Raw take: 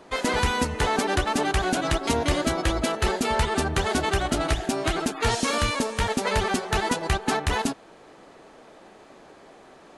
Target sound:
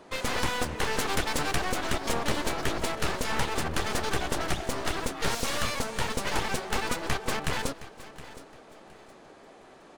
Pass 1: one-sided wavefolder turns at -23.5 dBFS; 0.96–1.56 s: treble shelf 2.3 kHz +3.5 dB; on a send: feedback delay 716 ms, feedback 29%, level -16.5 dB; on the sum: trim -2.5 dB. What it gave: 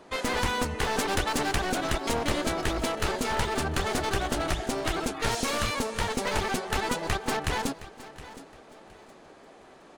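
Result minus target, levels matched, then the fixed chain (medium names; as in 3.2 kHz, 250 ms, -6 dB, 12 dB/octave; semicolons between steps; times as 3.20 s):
one-sided wavefolder: distortion -10 dB
one-sided wavefolder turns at -32 dBFS; 0.96–1.56 s: treble shelf 2.3 kHz +3.5 dB; on a send: feedback delay 716 ms, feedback 29%, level -16.5 dB; on the sum: trim -2.5 dB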